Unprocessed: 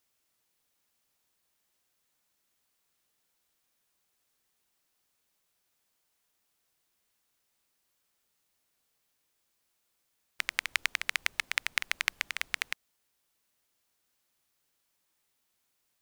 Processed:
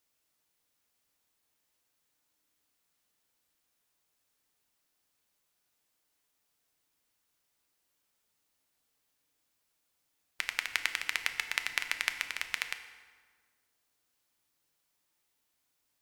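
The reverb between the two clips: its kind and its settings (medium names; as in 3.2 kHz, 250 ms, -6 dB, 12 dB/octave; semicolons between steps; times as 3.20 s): FDN reverb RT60 1.6 s, low-frequency decay 1.3×, high-frequency decay 0.7×, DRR 7 dB; trim -2 dB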